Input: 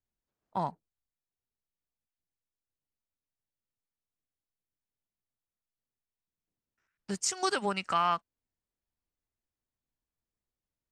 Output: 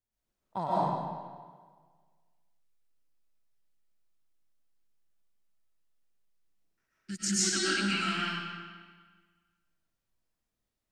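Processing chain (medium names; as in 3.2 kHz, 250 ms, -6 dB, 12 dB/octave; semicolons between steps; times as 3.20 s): time-frequency box 7.05–9.49 s, 370–1300 Hz -22 dB; algorithmic reverb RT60 1.6 s, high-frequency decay 0.85×, pre-delay 85 ms, DRR -9 dB; trim -3 dB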